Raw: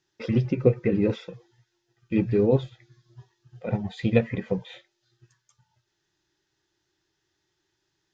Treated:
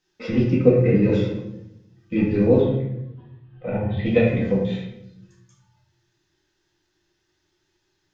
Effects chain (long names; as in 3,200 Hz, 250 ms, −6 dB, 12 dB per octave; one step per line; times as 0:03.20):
0:02.60–0:04.06: Butterworth low-pass 3,300 Hz 36 dB per octave
rectangular room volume 240 cubic metres, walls mixed, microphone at 2 metres
level −1.5 dB